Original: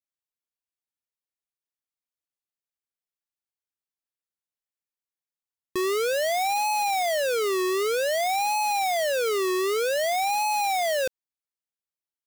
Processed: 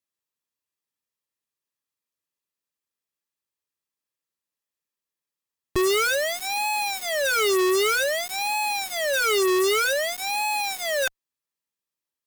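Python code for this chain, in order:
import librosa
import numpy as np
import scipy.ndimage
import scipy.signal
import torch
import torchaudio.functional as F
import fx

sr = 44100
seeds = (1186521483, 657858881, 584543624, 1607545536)

y = fx.notch_comb(x, sr, f0_hz=730.0)
y = (np.mod(10.0 ** (25.0 / 20.0) * y + 1.0, 2.0) - 1.0) / 10.0 ** (25.0 / 20.0)
y = fx.cheby_harmonics(y, sr, harmonics=(8,), levels_db=(-23,), full_scale_db=-25.0)
y = F.gain(torch.from_numpy(y), 5.5).numpy()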